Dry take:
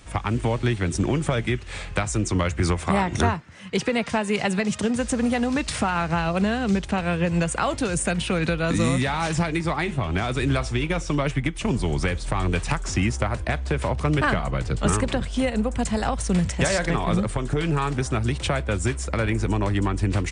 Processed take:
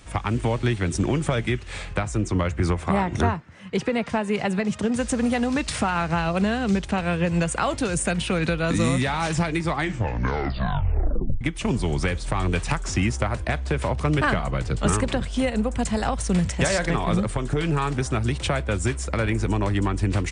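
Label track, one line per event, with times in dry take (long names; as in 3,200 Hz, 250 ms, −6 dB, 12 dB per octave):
1.930000	4.920000	high-shelf EQ 2,600 Hz −8 dB
9.710000	9.710000	tape stop 1.70 s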